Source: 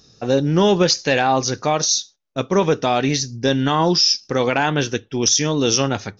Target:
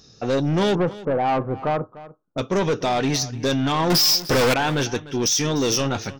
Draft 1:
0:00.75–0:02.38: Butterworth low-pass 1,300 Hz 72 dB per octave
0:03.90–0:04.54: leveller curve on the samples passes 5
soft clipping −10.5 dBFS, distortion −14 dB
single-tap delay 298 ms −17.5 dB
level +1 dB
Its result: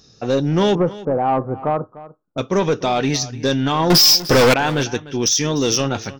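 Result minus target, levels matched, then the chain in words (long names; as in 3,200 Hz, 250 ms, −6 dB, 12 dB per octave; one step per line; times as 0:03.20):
soft clipping: distortion −7 dB
0:00.75–0:02.38: Butterworth low-pass 1,300 Hz 72 dB per octave
0:03.90–0:04.54: leveller curve on the samples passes 5
soft clipping −17.5 dBFS, distortion −7 dB
single-tap delay 298 ms −17.5 dB
level +1 dB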